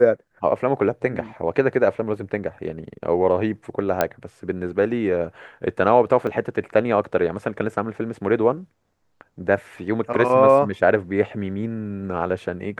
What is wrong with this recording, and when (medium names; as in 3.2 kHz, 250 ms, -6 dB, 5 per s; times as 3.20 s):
4.01 s: pop -5 dBFS
6.27 s: dropout 2.4 ms